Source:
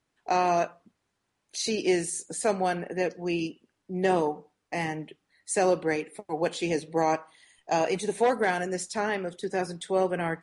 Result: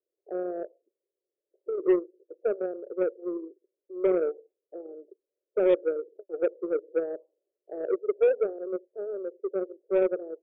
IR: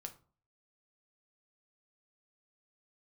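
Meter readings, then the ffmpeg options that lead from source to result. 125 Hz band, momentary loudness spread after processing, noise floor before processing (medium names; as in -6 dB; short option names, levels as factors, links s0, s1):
under -15 dB, 18 LU, -79 dBFS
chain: -af "asuperpass=centerf=450:order=8:qfactor=1.9,aeval=exprs='0.168*(cos(1*acos(clip(val(0)/0.168,-1,1)))-cos(1*PI/2))+0.00944*(cos(2*acos(clip(val(0)/0.168,-1,1)))-cos(2*PI/2))+0.00335*(cos(4*acos(clip(val(0)/0.168,-1,1)))-cos(4*PI/2))+0.00944*(cos(7*acos(clip(val(0)/0.168,-1,1)))-cos(7*PI/2))':c=same,volume=1.41"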